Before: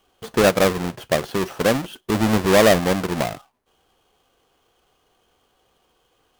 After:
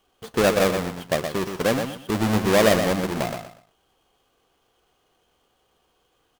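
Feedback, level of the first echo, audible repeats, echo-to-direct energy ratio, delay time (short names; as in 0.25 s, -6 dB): 25%, -7.0 dB, 3, -6.5 dB, 0.121 s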